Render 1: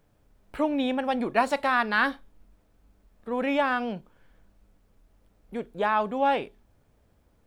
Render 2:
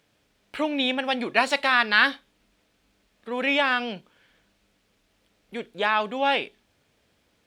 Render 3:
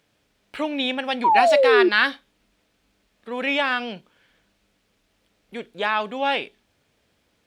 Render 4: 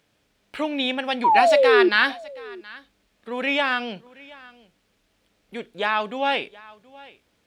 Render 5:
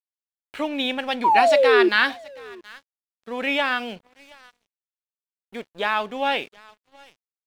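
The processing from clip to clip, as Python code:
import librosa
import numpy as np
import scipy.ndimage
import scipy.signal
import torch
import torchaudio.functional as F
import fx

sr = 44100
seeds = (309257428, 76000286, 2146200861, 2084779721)

y1 = fx.weighting(x, sr, curve='D')
y2 = fx.spec_paint(y1, sr, seeds[0], shape='fall', start_s=1.24, length_s=0.65, low_hz=340.0, high_hz=1000.0, level_db=-16.0)
y3 = y2 + 10.0 ** (-22.0 / 20.0) * np.pad(y2, (int(723 * sr / 1000.0), 0))[:len(y2)]
y4 = np.sign(y3) * np.maximum(np.abs(y3) - 10.0 ** (-47.5 / 20.0), 0.0)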